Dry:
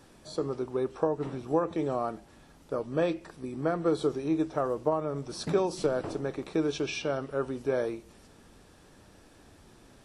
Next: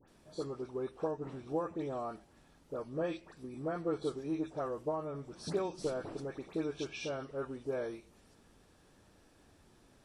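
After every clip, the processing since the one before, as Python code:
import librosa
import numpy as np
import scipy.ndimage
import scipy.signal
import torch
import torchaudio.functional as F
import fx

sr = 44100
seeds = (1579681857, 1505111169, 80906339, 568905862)

y = fx.dispersion(x, sr, late='highs', ms=82.0, hz=1900.0)
y = y * 10.0 ** (-8.0 / 20.0)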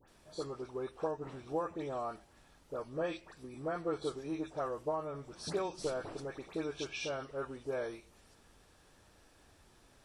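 y = fx.peak_eq(x, sr, hz=220.0, db=-7.0, octaves=2.3)
y = y * 10.0 ** (3.0 / 20.0)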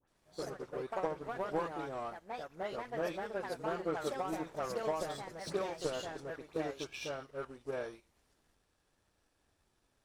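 y = fx.power_curve(x, sr, exponent=1.4)
y = fx.echo_pitch(y, sr, ms=96, semitones=3, count=2, db_per_echo=-3.0)
y = y * 10.0 ** (2.0 / 20.0)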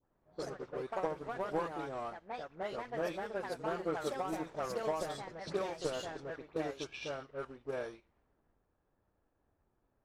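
y = fx.env_lowpass(x, sr, base_hz=1100.0, full_db=-34.5)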